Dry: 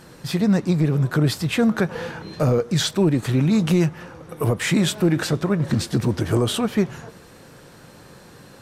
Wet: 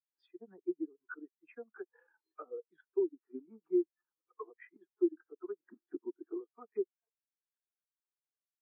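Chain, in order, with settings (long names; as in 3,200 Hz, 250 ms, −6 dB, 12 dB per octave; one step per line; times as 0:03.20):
every frequency bin delayed by itself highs early, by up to 115 ms
treble cut that deepens with the level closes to 1,600 Hz, closed at −17.5 dBFS
high-pass filter 380 Hz 24 dB per octave
parametric band 530 Hz −13 dB 0.72 octaves
speech leveller within 3 dB 0.5 s
transient designer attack +10 dB, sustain −11 dB
soft clipping −17 dBFS, distortion −16 dB
high-frequency loss of the air 220 metres
every bin expanded away from the loudest bin 2.5 to 1
level −2 dB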